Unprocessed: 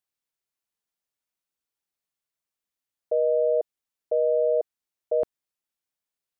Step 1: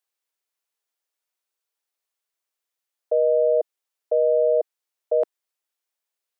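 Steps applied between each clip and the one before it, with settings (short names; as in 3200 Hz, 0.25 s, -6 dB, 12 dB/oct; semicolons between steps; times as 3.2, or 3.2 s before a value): HPF 360 Hz 24 dB/oct; gain +3.5 dB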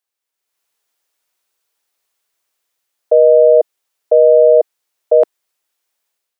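AGC gain up to 11 dB; gain +1.5 dB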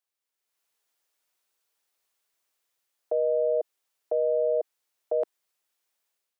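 limiter -12.5 dBFS, peak gain reduction 11 dB; gain -6 dB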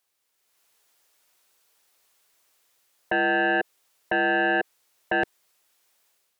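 sine folder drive 8 dB, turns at -18.5 dBFS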